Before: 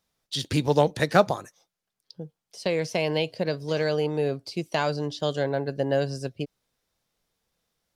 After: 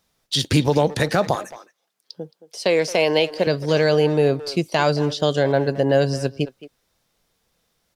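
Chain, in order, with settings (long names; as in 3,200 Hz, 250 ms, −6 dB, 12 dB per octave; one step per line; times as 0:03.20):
0:01.35–0:03.47: high-pass filter 260 Hz 12 dB per octave
brickwall limiter −15.5 dBFS, peak gain reduction 11 dB
far-end echo of a speakerphone 220 ms, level −14 dB
level +8.5 dB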